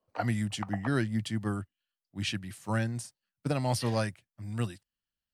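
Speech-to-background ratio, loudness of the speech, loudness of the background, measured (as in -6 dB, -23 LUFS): 10.5 dB, -33.0 LUFS, -43.5 LUFS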